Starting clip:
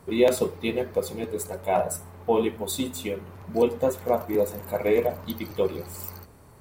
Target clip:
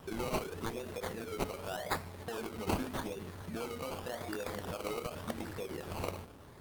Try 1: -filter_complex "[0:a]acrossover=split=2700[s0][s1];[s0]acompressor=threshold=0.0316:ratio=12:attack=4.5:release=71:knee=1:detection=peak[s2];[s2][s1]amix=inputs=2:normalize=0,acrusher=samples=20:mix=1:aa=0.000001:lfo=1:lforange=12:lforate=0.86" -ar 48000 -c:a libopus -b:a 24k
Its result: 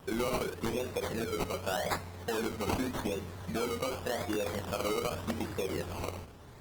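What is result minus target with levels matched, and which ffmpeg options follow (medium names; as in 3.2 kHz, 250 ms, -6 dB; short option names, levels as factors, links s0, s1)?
compression: peak gain reduction -7 dB
-filter_complex "[0:a]acrossover=split=2700[s0][s1];[s0]acompressor=threshold=0.0133:ratio=12:attack=4.5:release=71:knee=1:detection=peak[s2];[s2][s1]amix=inputs=2:normalize=0,acrusher=samples=20:mix=1:aa=0.000001:lfo=1:lforange=12:lforate=0.86" -ar 48000 -c:a libopus -b:a 24k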